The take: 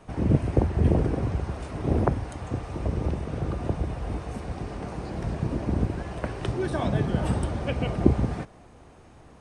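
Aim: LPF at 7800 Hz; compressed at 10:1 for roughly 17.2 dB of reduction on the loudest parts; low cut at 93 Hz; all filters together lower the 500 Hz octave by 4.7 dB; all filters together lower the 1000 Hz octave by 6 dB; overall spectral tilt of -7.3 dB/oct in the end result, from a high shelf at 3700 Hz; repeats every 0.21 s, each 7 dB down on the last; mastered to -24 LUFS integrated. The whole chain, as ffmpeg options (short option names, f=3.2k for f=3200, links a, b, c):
-af "highpass=93,lowpass=7.8k,equalizer=f=500:t=o:g=-5,equalizer=f=1k:t=o:g=-5.5,highshelf=f=3.7k:g=-8.5,acompressor=threshold=-34dB:ratio=10,aecho=1:1:210|420|630|840|1050:0.447|0.201|0.0905|0.0407|0.0183,volume=15dB"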